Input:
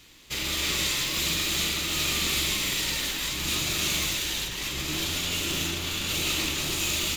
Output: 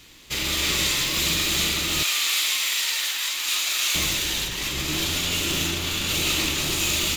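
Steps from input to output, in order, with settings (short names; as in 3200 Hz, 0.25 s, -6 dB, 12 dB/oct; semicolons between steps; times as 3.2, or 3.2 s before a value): 2.03–3.95 HPF 1000 Hz 12 dB/oct; gain +4 dB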